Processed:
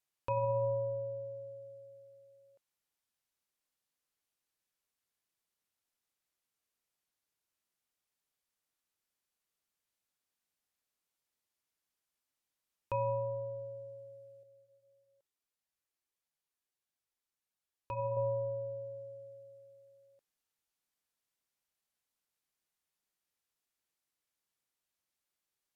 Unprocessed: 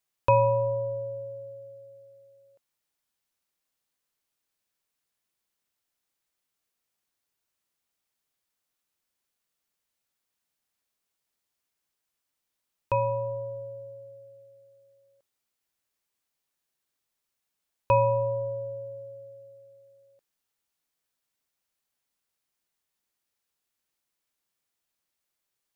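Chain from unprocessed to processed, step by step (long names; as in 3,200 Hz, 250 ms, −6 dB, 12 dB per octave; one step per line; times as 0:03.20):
treble cut that deepens with the level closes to 2,500 Hz, closed at −26.5 dBFS
brickwall limiter −20.5 dBFS, peak gain reduction 10.5 dB
0:14.43–0:18.17: flanger 1.6 Hz, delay 1 ms, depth 2.2 ms, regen −45%
level −5 dB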